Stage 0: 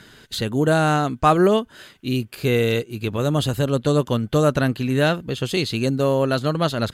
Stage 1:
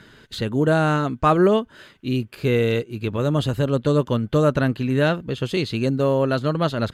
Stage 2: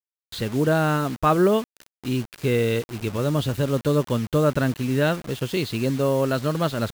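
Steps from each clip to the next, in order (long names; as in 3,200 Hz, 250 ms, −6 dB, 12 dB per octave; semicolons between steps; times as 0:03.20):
high-shelf EQ 4,700 Hz −11 dB; notch filter 740 Hz, Q 12
bit reduction 6 bits; level −2 dB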